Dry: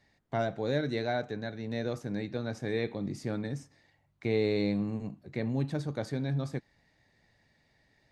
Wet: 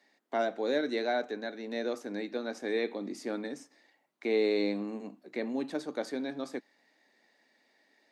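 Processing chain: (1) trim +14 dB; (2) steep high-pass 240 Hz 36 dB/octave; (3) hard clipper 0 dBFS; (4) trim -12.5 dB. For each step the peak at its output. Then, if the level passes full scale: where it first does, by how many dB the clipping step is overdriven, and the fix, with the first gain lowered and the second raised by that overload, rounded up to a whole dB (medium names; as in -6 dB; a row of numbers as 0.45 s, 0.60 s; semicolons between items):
-3.0 dBFS, -5.0 dBFS, -5.0 dBFS, -17.5 dBFS; nothing clips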